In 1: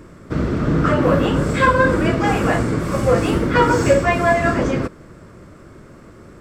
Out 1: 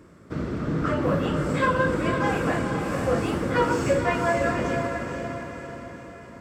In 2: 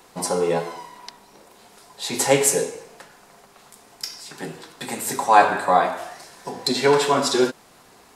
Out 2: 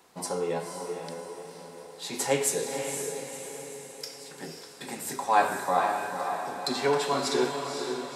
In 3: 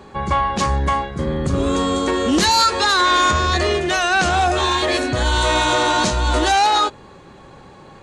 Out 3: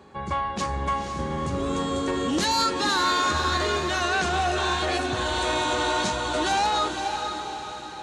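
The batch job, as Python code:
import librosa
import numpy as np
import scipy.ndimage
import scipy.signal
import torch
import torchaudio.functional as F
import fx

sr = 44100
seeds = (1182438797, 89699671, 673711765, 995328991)

y = scipy.signal.sosfilt(scipy.signal.butter(2, 55.0, 'highpass', fs=sr, output='sos'), x)
y = fx.hum_notches(y, sr, base_hz=60, count=2)
y = fx.echo_diffused(y, sr, ms=504, feedback_pct=51, wet_db=-5.5)
y = F.gain(torch.from_numpy(y), -8.5).numpy()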